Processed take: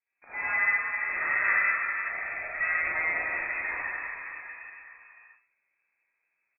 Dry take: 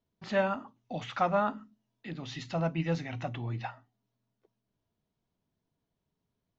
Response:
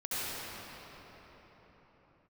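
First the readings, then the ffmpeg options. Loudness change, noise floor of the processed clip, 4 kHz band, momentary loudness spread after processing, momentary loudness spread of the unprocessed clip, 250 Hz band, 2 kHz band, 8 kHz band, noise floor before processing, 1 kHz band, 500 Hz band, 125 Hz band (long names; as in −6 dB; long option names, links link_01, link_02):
+6.0 dB, −79 dBFS, below −35 dB, 16 LU, 14 LU, −18.0 dB, +17.0 dB, can't be measured, −85 dBFS, −0.5 dB, −11.5 dB, below −20 dB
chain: -filter_complex "[0:a]equalizer=frequency=96:width=0.33:gain=-11,bandreject=frequency=114.6:width_type=h:width=4,bandreject=frequency=229.2:width_type=h:width=4,bandreject=frequency=343.8:width_type=h:width=4,bandreject=frequency=458.4:width_type=h:width=4,bandreject=frequency=573:width_type=h:width=4,bandreject=frequency=687.6:width_type=h:width=4,bandreject=frequency=802.2:width_type=h:width=4,bandreject=frequency=916.8:width_type=h:width=4,bandreject=frequency=1031.4:width_type=h:width=4,bandreject=frequency=1146:width_type=h:width=4,bandreject=frequency=1260.6:width_type=h:width=4,bandreject=frequency=1375.2:width_type=h:width=4,bandreject=frequency=1489.8:width_type=h:width=4,bandreject=frequency=1604.4:width_type=h:width=4,bandreject=frequency=1719:width_type=h:width=4,bandreject=frequency=1833.6:width_type=h:width=4,bandreject=frequency=1948.2:width_type=h:width=4,bandreject=frequency=2062.8:width_type=h:width=4,bandreject=frequency=2177.4:width_type=h:width=4,bandreject=frequency=2292:width_type=h:width=4,bandreject=frequency=2406.6:width_type=h:width=4,bandreject=frequency=2521.2:width_type=h:width=4,bandreject=frequency=2635.8:width_type=h:width=4,bandreject=frequency=2750.4:width_type=h:width=4,bandreject=frequency=2865:width_type=h:width=4,bandreject=frequency=2979.6:width_type=h:width=4,bandreject=frequency=3094.2:width_type=h:width=4,bandreject=frequency=3208.8:width_type=h:width=4,bandreject=frequency=3323.4:width_type=h:width=4,bandreject=frequency=3438:width_type=h:width=4,bandreject=frequency=3552.6:width_type=h:width=4,bandreject=frequency=3667.2:width_type=h:width=4,bandreject=frequency=3781.8:width_type=h:width=4,bandreject=frequency=3896.4:width_type=h:width=4,bandreject=frequency=4011:width_type=h:width=4,bandreject=frequency=4125.6:width_type=h:width=4,bandreject=frequency=4240.2:width_type=h:width=4,acrossover=split=400|840[link_01][link_02][link_03];[link_01]acompressor=threshold=-54dB:ratio=4[link_04];[link_02]acompressor=threshold=-34dB:ratio=4[link_05];[link_03]acompressor=threshold=-44dB:ratio=4[link_06];[link_04][link_05][link_06]amix=inputs=3:normalize=0,aresample=8000,asoftclip=type=tanh:threshold=-29dB,aresample=44100,aeval=exprs='0.0398*(cos(1*acos(clip(val(0)/0.0398,-1,1)))-cos(1*PI/2))+0.0112*(cos(2*acos(clip(val(0)/0.0398,-1,1)))-cos(2*PI/2))+0.00178*(cos(7*acos(clip(val(0)/0.0398,-1,1)))-cos(7*PI/2))':channel_layout=same[link_07];[1:a]atrim=start_sample=2205,asetrate=57330,aresample=44100[link_08];[link_07][link_08]afir=irnorm=-1:irlink=0,lowpass=frequency=2200:width_type=q:width=0.5098,lowpass=frequency=2200:width_type=q:width=0.6013,lowpass=frequency=2200:width_type=q:width=0.9,lowpass=frequency=2200:width_type=q:width=2.563,afreqshift=-2600,volume=8dB"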